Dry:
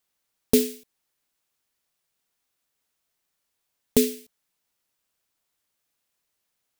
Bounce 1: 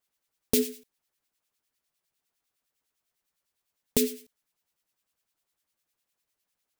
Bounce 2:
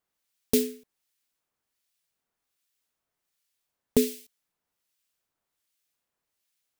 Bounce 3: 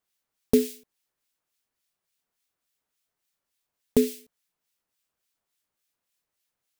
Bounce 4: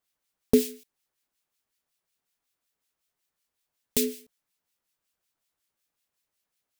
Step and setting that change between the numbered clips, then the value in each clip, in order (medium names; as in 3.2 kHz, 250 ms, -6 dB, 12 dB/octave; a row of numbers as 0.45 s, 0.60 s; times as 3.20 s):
harmonic tremolo, rate: 9.9 Hz, 1.3 Hz, 3.5 Hz, 5.4 Hz